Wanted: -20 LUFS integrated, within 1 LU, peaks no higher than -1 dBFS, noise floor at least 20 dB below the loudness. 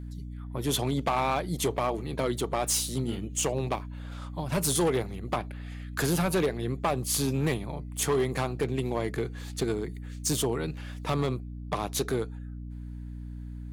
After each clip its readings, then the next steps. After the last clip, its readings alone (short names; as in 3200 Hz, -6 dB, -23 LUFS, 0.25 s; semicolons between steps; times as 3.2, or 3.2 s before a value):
clipped 1.2%; flat tops at -20.5 dBFS; hum 60 Hz; harmonics up to 300 Hz; hum level -37 dBFS; loudness -29.5 LUFS; peak -20.5 dBFS; loudness target -20.0 LUFS
-> clip repair -20.5 dBFS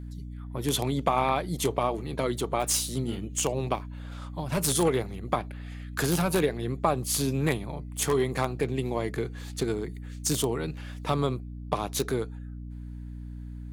clipped 0.0%; hum 60 Hz; harmonics up to 300 Hz; hum level -36 dBFS
-> notches 60/120/180/240/300 Hz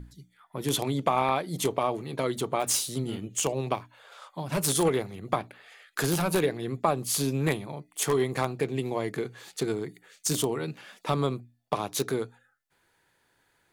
hum none; loudness -29.0 LUFS; peak -11.0 dBFS; loudness target -20.0 LUFS
-> gain +9 dB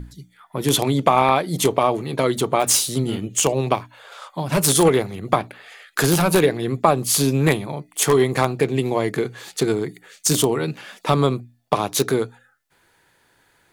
loudness -20.0 LUFS; peak -2.0 dBFS; noise floor -61 dBFS